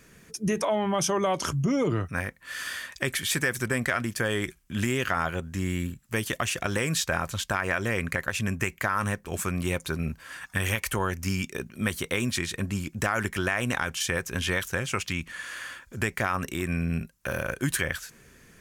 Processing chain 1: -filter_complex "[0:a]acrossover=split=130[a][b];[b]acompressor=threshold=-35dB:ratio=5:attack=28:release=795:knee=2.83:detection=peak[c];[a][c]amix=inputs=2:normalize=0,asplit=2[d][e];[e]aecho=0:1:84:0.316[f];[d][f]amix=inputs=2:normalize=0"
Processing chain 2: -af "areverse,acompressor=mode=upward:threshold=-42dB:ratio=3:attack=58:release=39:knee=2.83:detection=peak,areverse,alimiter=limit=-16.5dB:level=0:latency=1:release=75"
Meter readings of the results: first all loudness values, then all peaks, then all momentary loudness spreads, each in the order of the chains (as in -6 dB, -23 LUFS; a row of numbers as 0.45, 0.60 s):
-35.5, -29.5 LUFS; -12.5, -16.5 dBFS; 5, 7 LU